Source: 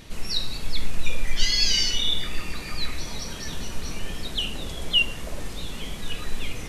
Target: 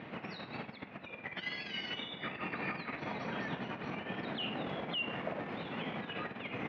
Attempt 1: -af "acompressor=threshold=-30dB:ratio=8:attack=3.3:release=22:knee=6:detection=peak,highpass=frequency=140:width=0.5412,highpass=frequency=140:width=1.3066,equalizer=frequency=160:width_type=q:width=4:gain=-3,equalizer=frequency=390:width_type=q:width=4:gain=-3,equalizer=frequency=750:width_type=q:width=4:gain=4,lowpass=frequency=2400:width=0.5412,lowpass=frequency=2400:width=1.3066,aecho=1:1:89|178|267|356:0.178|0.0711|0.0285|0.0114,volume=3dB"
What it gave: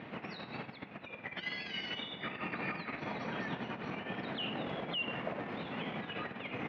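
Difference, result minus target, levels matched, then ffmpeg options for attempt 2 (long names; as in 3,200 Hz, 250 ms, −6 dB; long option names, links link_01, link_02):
echo 41 ms late
-af "acompressor=threshold=-30dB:ratio=8:attack=3.3:release=22:knee=6:detection=peak,highpass=frequency=140:width=0.5412,highpass=frequency=140:width=1.3066,equalizer=frequency=160:width_type=q:width=4:gain=-3,equalizer=frequency=390:width_type=q:width=4:gain=-3,equalizer=frequency=750:width_type=q:width=4:gain=4,lowpass=frequency=2400:width=0.5412,lowpass=frequency=2400:width=1.3066,aecho=1:1:48|96|144|192:0.178|0.0711|0.0285|0.0114,volume=3dB"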